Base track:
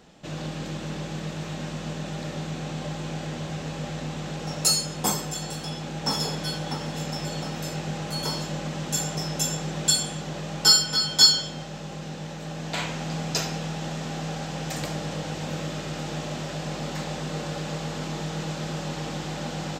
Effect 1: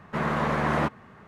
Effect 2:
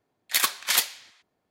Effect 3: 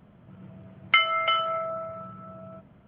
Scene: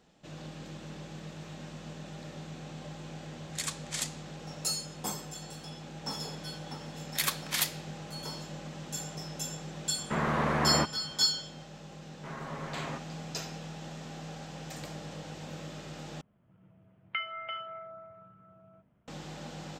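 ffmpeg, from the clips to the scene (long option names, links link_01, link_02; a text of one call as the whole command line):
ffmpeg -i bed.wav -i cue0.wav -i cue1.wav -i cue2.wav -filter_complex "[2:a]asplit=2[link_01][link_02];[1:a]asplit=2[link_03][link_04];[0:a]volume=-11dB[link_05];[link_01]lowpass=frequency=7700:width_type=q:width=3[link_06];[link_04]aecho=1:1:7.4:0.65[link_07];[link_05]asplit=2[link_08][link_09];[link_08]atrim=end=16.214[link_10];[3:a]atrim=end=2.87,asetpts=PTS-STARTPTS,volume=-14.5dB[link_11];[link_09]atrim=start=19.076[link_12];[link_06]atrim=end=1.5,asetpts=PTS-STARTPTS,volume=-15.5dB,afade=type=in:duration=0.004:curve=hsin,afade=type=out:start_time=1.496:duration=0.004:curve=hsin,adelay=3240[link_13];[link_02]atrim=end=1.5,asetpts=PTS-STARTPTS,volume=-7.5dB,afade=type=in:duration=0.004:curve=hsin,afade=type=out:start_time=1.496:duration=0.004:curve=hsin,adelay=6840[link_14];[link_03]atrim=end=1.27,asetpts=PTS-STARTPTS,volume=-3dB,afade=type=in:duration=0.004:curve=hsin,afade=type=out:start_time=1.266:duration=0.004:curve=hsin,adelay=9970[link_15];[link_07]atrim=end=1.27,asetpts=PTS-STARTPTS,volume=-16.5dB,afade=type=in:duration=0.004:curve=hsin,afade=type=out:start_time=1.266:duration=0.004:curve=hsin,adelay=12100[link_16];[link_10][link_11]acrossfade=duration=0.004:curve1=hsin:curve2=hsin[link_17];[link_17][link_12]acrossfade=duration=0.004:curve1=hsin:curve2=hsin[link_18];[link_18][link_13][link_14][link_15][link_16]amix=inputs=5:normalize=0" out.wav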